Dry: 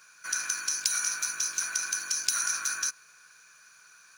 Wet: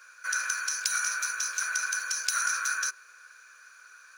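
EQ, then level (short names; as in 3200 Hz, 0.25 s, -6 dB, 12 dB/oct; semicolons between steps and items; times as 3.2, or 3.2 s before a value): rippled Chebyshev high-pass 370 Hz, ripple 9 dB; +6.5 dB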